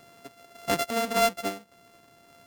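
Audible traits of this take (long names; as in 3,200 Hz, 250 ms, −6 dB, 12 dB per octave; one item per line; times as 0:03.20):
a buzz of ramps at a fixed pitch in blocks of 64 samples
sample-and-hold tremolo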